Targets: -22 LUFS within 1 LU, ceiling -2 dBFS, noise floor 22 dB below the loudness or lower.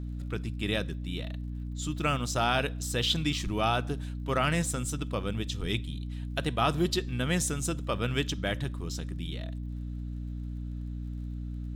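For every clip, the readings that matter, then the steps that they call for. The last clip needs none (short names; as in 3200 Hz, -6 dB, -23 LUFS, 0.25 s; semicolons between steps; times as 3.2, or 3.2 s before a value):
ticks 37/s; hum 60 Hz; harmonics up to 300 Hz; hum level -33 dBFS; loudness -31.5 LUFS; peak -13.5 dBFS; loudness target -22.0 LUFS
-> de-click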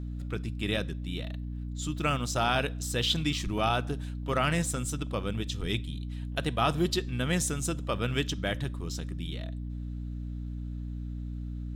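ticks 0.85/s; hum 60 Hz; harmonics up to 300 Hz; hum level -33 dBFS
-> de-hum 60 Hz, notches 5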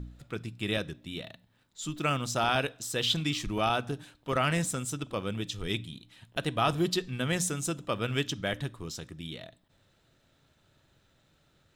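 hum none; loudness -31.5 LUFS; peak -13.5 dBFS; loudness target -22.0 LUFS
-> gain +9.5 dB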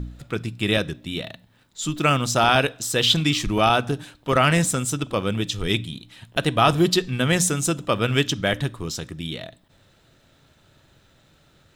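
loudness -22.0 LUFS; peak -4.0 dBFS; noise floor -59 dBFS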